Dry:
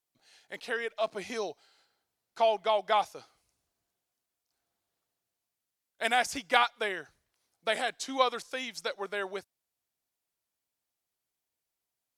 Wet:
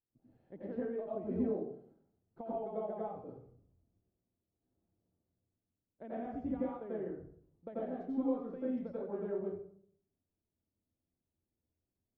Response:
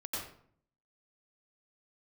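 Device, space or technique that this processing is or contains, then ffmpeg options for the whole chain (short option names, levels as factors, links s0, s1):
television next door: -filter_complex "[0:a]acompressor=threshold=0.0178:ratio=4,lowpass=260[s0];[1:a]atrim=start_sample=2205[s1];[s0][s1]afir=irnorm=-1:irlink=0,volume=3.35"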